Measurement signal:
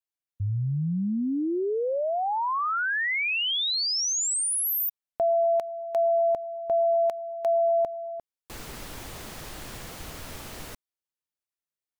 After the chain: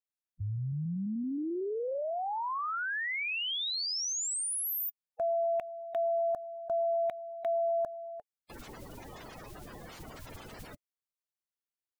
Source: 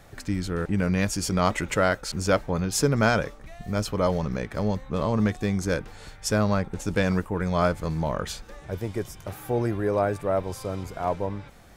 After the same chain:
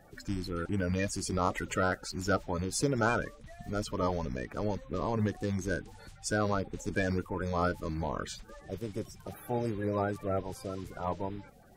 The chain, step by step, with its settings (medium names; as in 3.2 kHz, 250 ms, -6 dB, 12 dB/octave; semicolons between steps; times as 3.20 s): coarse spectral quantiser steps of 30 dB; trim -6.5 dB